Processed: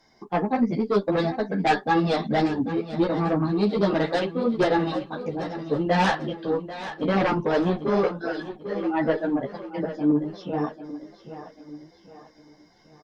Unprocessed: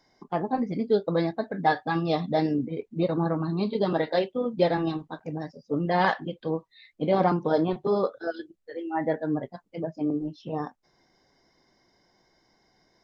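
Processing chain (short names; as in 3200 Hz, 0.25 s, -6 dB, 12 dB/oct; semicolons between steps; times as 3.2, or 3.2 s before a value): added harmonics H 5 -6 dB, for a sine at -9.5 dBFS; feedback echo 0.791 s, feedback 43%, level -12.5 dB; ensemble effect; gain -2.5 dB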